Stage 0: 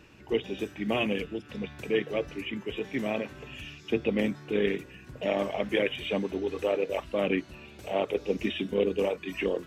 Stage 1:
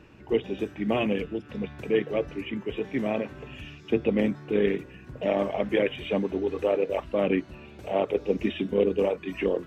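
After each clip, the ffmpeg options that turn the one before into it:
-af "highshelf=f=2.6k:g=-11,volume=3.5dB"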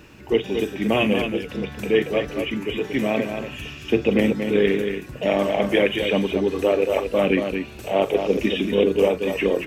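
-filter_complex "[0:a]crystalizer=i=3:c=0,asplit=2[a][b];[b]aecho=0:1:41|229:0.188|0.473[c];[a][c]amix=inputs=2:normalize=0,volume=4.5dB"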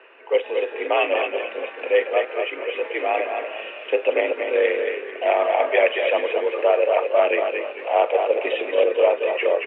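-filter_complex "[0:a]asplit=7[a][b][c][d][e][f][g];[b]adelay=221,afreqshift=-39,volume=-10dB[h];[c]adelay=442,afreqshift=-78,volume=-15dB[i];[d]adelay=663,afreqshift=-117,volume=-20.1dB[j];[e]adelay=884,afreqshift=-156,volume=-25.1dB[k];[f]adelay=1105,afreqshift=-195,volume=-30.1dB[l];[g]adelay=1326,afreqshift=-234,volume=-35.2dB[m];[a][h][i][j][k][l][m]amix=inputs=7:normalize=0,highpass=f=400:t=q:w=0.5412,highpass=f=400:t=q:w=1.307,lowpass=f=2.7k:t=q:w=0.5176,lowpass=f=2.7k:t=q:w=0.7071,lowpass=f=2.7k:t=q:w=1.932,afreqshift=62,volume=2.5dB"

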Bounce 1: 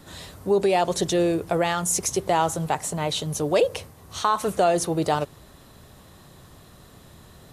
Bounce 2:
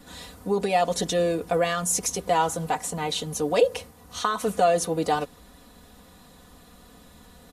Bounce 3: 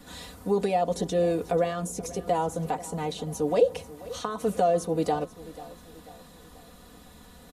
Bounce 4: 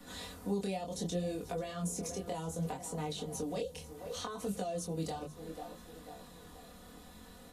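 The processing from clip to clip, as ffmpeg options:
-af "aecho=1:1:4.1:0.9,volume=-3.5dB"
-filter_complex "[0:a]acrossover=split=770[a][b];[b]acompressor=threshold=-39dB:ratio=4[c];[a][c]amix=inputs=2:normalize=0,aecho=1:1:488|976|1464|1952:0.126|0.0604|0.029|0.0139"
-filter_complex "[0:a]bandreject=f=50:t=h:w=6,bandreject=f=100:t=h:w=6,bandreject=f=150:t=h:w=6,acrossover=split=190|3000[a][b][c];[b]acompressor=threshold=-35dB:ratio=6[d];[a][d][c]amix=inputs=3:normalize=0,flanger=delay=20:depth=6.1:speed=0.66"

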